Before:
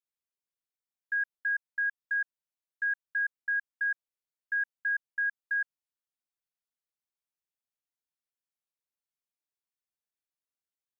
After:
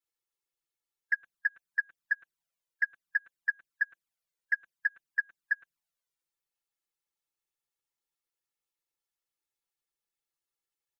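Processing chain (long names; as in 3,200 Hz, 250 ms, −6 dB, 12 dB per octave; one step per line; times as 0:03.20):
comb filter 5.9 ms, depth 89%
flanger swept by the level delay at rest 2.3 ms, full sweep at −28 dBFS
harmonic and percussive parts rebalanced harmonic −10 dB
level +8.5 dB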